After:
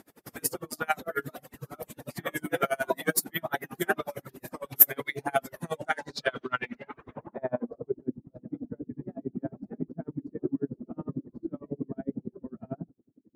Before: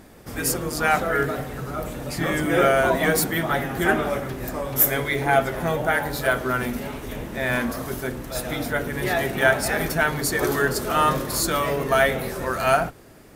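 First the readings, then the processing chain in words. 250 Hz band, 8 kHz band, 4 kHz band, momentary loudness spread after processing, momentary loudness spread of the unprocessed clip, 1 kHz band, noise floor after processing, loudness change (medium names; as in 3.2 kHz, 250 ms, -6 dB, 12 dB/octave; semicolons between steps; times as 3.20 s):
-8.0 dB, -7.5 dB, -12.0 dB, 15 LU, 11 LU, -12.0 dB, -69 dBFS, -8.0 dB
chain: high-pass 140 Hz 12 dB/octave; reverb removal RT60 0.94 s; low-pass sweep 13 kHz -> 270 Hz, 5.53–8.14 s; logarithmic tremolo 11 Hz, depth 34 dB; trim -2 dB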